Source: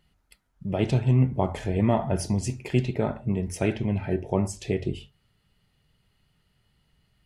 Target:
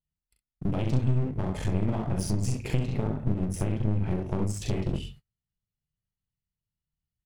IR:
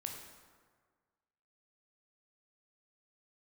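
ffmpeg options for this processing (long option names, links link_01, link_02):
-filter_complex "[0:a]aecho=1:1:39|66:0.596|0.596,acompressor=threshold=-28dB:ratio=6,bass=frequency=250:gain=11,treble=frequency=4000:gain=4,agate=range=-34dB:threshold=-45dB:ratio=16:detection=peak,asettb=1/sr,asplit=3[link_01][link_02][link_03];[link_01]atrim=end=3.034[link_04];[link_02]atrim=start=3.03:end=4.06,asetpts=PTS-STARTPTS,afade=type=in:duration=0.004:curve=qsin,afade=type=out:start_time=1.026:duration=0.004:curve=qsin,equalizer=frequency=4500:width=0.48:gain=-6.5[link_05];[link_03]atrim=start=4.056[link_06];[link_04][link_05]acrossfade=duration=0.004:curve1=hsin:curve2=qsin[link_07];[link_07][link_06]acrossfade=duration=0.004:curve1=qsin:curve2=hsin,aeval=exprs='clip(val(0),-1,0.0178)':channel_layout=same"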